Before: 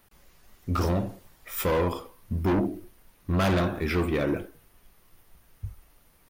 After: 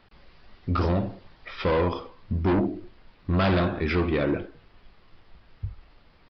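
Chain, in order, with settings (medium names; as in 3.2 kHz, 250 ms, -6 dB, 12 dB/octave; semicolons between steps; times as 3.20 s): in parallel at -2 dB: compression, threshold -36 dBFS, peak gain reduction 13 dB; on the sum: resampled via 11.025 kHz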